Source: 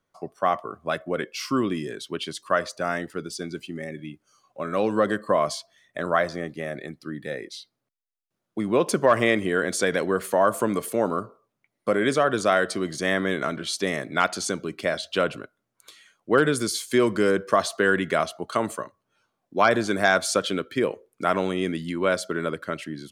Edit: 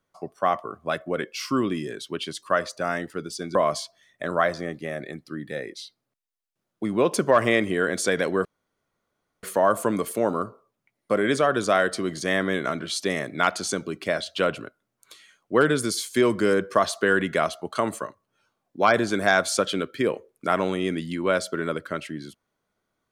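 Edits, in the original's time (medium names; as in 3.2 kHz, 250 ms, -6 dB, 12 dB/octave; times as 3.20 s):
3.55–5.30 s: delete
10.20 s: insert room tone 0.98 s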